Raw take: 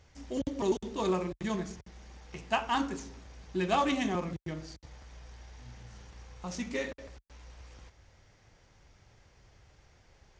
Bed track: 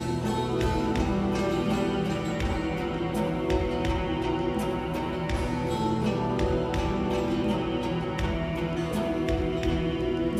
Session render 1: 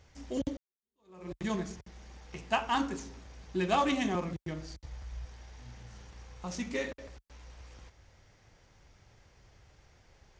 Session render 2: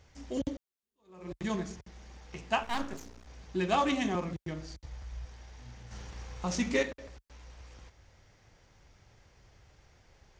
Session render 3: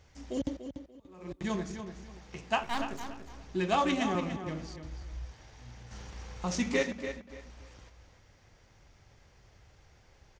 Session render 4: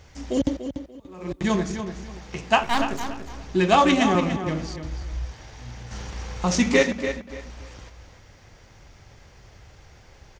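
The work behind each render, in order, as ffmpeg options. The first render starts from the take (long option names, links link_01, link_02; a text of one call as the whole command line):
ffmpeg -i in.wav -filter_complex "[0:a]asettb=1/sr,asplit=3[link_01][link_02][link_03];[link_01]atrim=end=4.474[link_04];[link_02]atrim=start=4.47:end=5.25,asetpts=PTS-STARTPTS,afade=type=in:duration=0.004:curve=qsin,afade=type=out:start_time=0.776:duration=0.004:curve=qsin,asubboost=boost=11.5:cutoff=130[link_05];[link_03]atrim=start=5.246[link_06];[link_04][link_05]acrossfade=duration=0.004:curve1=hsin:curve2=qsin[link_07];[link_07][link_06]acrossfade=duration=0.004:curve1=qsin:curve2=hsin,asplit=2[link_08][link_09];[link_08]atrim=end=0.57,asetpts=PTS-STARTPTS,afade=type=out:start_time=0.566:duration=0.004:curve=hsin[link_10];[link_09]atrim=start=0.57,asetpts=PTS-STARTPTS,afade=type=in:duration=0.75:curve=exp[link_11];[link_10][link_11]concat=n=2:v=0:a=1" out.wav
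ffmpeg -i in.wav -filter_complex "[0:a]asettb=1/sr,asplit=3[link_01][link_02][link_03];[link_01]atrim=end=2.634[link_04];[link_02]atrim=start=2.63:end=3.27,asetpts=PTS-STARTPTS,afade=type=in:duration=0.004:curve=qsin,afade=type=out:start_time=0.636:duration=0.004:curve=qsin,aeval=exprs='max(val(0),0)':channel_layout=same[link_05];[link_03]atrim=start=3.266[link_06];[link_04][link_05]acrossfade=duration=0.004:curve1=hsin:curve2=qsin[link_07];[link_07][link_06]acrossfade=duration=0.004:curve1=qsin:curve2=hsin,asettb=1/sr,asplit=3[link_08][link_09][link_10];[link_08]atrim=end=5.914[link_11];[link_09]atrim=start=5.91:end=6.83,asetpts=PTS-STARTPTS,afade=type=in:duration=0.004:curve=qsin,afade=type=out:start_time=0.916:duration=0.004:curve=qsin,acontrast=49[link_12];[link_10]atrim=start=6.826[link_13];[link_11][link_12]acrossfade=duration=0.004:curve1=hsin:curve2=qsin[link_14];[link_14][link_13]acrossfade=duration=0.004:curve1=qsin:curve2=hsin" out.wav
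ffmpeg -i in.wav -filter_complex "[0:a]asplit=2[link_01][link_02];[link_02]adelay=290,lowpass=frequency=4800:poles=1,volume=-9dB,asplit=2[link_03][link_04];[link_04]adelay=290,lowpass=frequency=4800:poles=1,volume=0.26,asplit=2[link_05][link_06];[link_06]adelay=290,lowpass=frequency=4800:poles=1,volume=0.26[link_07];[link_01][link_03][link_05][link_07]amix=inputs=4:normalize=0" out.wav
ffmpeg -i in.wav -af "volume=10.5dB" out.wav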